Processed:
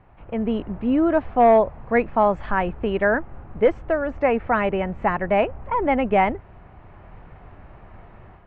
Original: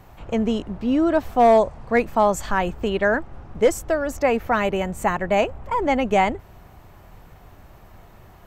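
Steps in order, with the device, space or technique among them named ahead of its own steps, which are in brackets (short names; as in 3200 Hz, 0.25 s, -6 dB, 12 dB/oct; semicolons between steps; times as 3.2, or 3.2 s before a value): action camera in a waterproof case (LPF 2600 Hz 24 dB/oct; AGC gain up to 8.5 dB; gain -6 dB; AAC 96 kbps 48000 Hz)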